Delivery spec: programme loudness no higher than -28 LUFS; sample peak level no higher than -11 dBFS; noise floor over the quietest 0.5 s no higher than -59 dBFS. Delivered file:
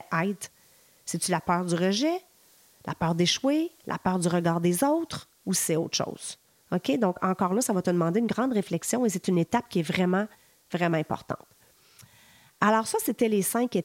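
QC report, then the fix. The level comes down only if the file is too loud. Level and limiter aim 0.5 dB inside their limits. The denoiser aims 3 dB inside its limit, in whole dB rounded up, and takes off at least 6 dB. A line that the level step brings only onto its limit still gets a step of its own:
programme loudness -26.5 LUFS: fail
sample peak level -9.0 dBFS: fail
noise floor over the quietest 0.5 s -60 dBFS: pass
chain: trim -2 dB; peak limiter -11.5 dBFS

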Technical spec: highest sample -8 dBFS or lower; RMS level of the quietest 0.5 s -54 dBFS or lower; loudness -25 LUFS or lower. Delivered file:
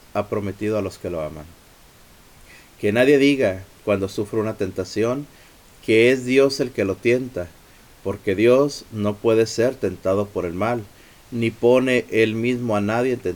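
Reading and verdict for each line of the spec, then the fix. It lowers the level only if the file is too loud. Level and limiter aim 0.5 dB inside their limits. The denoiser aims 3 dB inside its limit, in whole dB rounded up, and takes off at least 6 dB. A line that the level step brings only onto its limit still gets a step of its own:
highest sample -5.0 dBFS: fail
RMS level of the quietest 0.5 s -49 dBFS: fail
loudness -20.5 LUFS: fail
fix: noise reduction 6 dB, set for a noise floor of -49 dBFS; trim -5 dB

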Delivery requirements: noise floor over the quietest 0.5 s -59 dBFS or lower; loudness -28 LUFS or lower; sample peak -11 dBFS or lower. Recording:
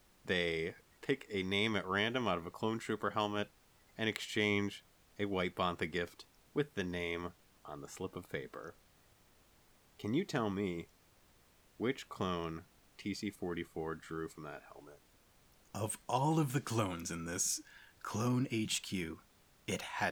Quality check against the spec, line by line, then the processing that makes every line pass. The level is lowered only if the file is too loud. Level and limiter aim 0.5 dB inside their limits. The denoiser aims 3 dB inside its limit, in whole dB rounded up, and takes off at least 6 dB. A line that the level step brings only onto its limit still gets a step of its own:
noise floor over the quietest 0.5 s -67 dBFS: pass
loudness -37.5 LUFS: pass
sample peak -18.5 dBFS: pass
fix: none needed

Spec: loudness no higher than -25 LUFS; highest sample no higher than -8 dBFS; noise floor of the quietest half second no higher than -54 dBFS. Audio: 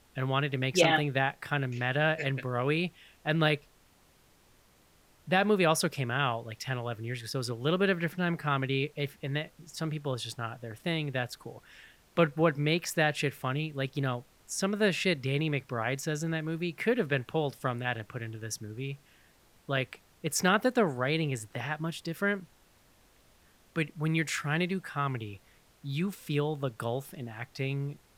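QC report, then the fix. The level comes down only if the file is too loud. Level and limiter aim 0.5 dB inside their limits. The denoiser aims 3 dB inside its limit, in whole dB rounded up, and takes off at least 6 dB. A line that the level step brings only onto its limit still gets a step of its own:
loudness -31.0 LUFS: pass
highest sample -11.5 dBFS: pass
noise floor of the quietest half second -63 dBFS: pass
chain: none needed

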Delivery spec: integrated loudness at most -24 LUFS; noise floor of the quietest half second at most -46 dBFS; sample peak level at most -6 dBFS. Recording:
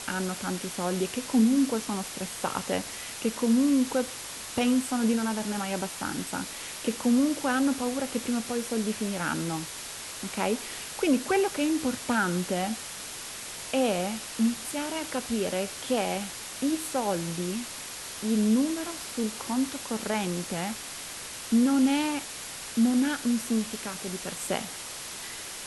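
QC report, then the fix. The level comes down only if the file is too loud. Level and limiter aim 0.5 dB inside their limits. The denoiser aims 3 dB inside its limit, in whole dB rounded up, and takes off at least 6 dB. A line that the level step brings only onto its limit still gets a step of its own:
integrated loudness -28.5 LUFS: pass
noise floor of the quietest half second -39 dBFS: fail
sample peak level -13.0 dBFS: pass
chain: noise reduction 10 dB, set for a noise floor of -39 dBFS

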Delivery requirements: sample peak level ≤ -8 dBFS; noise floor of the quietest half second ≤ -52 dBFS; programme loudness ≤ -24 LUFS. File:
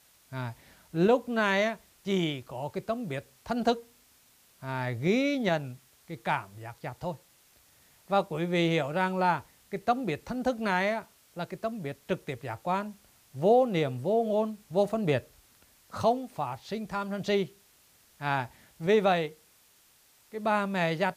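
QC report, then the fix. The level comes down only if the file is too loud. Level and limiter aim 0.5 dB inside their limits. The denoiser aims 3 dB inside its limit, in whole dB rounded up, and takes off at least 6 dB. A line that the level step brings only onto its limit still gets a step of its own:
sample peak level -13.0 dBFS: pass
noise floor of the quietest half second -62 dBFS: pass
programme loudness -29.5 LUFS: pass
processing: none needed

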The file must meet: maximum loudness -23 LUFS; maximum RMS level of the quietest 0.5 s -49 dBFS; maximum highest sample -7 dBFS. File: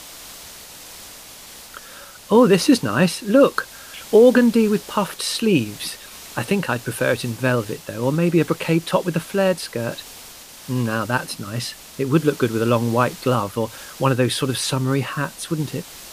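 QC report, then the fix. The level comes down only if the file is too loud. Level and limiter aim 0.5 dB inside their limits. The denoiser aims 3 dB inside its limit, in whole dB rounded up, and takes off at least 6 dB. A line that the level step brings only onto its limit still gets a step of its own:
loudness -20.0 LUFS: fail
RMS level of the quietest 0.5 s -41 dBFS: fail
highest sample -3.5 dBFS: fail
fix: noise reduction 8 dB, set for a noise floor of -41 dBFS; trim -3.5 dB; peak limiter -7.5 dBFS

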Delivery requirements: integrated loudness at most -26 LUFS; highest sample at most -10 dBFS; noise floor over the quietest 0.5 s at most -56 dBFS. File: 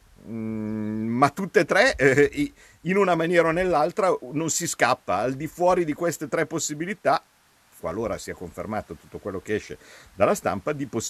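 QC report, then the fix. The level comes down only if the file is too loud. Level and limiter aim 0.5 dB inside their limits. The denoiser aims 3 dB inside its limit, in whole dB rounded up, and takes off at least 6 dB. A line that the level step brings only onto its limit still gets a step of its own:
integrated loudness -24.0 LUFS: fail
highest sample -2.5 dBFS: fail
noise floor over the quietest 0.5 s -60 dBFS: pass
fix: trim -2.5 dB; peak limiter -10.5 dBFS

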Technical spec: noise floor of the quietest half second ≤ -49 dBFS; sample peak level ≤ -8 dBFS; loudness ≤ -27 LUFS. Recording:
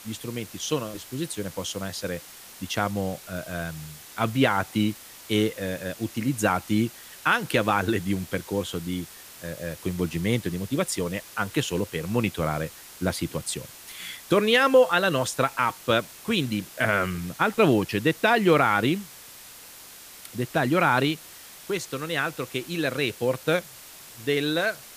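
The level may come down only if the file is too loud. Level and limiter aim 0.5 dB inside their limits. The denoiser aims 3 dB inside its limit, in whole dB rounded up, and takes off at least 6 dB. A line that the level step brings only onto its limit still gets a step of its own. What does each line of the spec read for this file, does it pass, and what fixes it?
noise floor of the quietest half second -46 dBFS: fail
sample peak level -7.0 dBFS: fail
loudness -25.5 LUFS: fail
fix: noise reduction 6 dB, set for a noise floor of -46 dBFS; trim -2 dB

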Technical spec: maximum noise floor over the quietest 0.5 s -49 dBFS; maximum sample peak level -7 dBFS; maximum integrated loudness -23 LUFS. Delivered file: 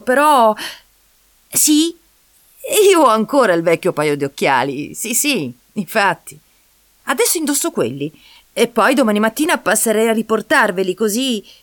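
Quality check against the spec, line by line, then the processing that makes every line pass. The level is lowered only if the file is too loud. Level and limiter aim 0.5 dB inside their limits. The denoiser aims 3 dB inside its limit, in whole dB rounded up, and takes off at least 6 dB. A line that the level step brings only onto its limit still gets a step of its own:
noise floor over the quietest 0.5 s -55 dBFS: pass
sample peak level -2.0 dBFS: fail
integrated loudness -15.0 LUFS: fail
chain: trim -8.5 dB

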